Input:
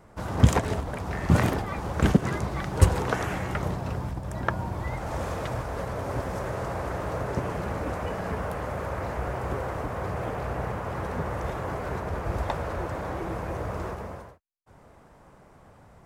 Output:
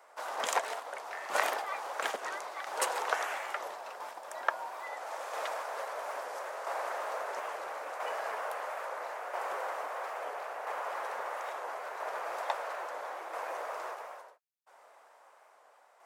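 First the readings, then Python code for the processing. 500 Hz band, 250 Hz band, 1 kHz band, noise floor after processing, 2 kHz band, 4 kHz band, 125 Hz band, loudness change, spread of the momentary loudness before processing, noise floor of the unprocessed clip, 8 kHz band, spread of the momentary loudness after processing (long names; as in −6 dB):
−7.0 dB, −28.5 dB, −2.0 dB, −61 dBFS, −2.0 dB, −1.5 dB, below −40 dB, −7.5 dB, 10 LU, −54 dBFS, −1.5 dB, 8 LU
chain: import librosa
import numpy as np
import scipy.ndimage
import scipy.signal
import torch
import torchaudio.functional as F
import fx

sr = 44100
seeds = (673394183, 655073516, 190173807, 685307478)

y = fx.tremolo_shape(x, sr, shape='saw_down', hz=0.75, depth_pct=45)
y = scipy.signal.sosfilt(scipy.signal.butter(4, 590.0, 'highpass', fs=sr, output='sos'), y)
y = fx.record_warp(y, sr, rpm=45.0, depth_cents=100.0)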